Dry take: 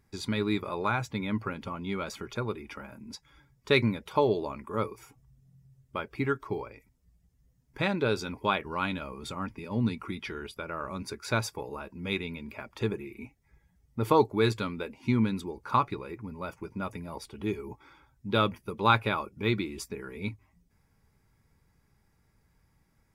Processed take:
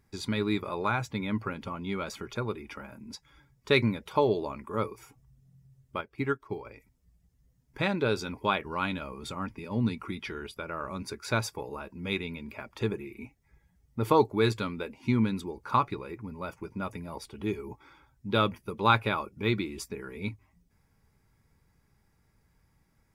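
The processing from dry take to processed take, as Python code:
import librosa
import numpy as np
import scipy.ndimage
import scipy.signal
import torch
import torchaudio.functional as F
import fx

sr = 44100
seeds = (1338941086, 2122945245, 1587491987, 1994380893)

y = fx.upward_expand(x, sr, threshold_db=-48.0, expansion=1.5, at=(6.01, 6.65))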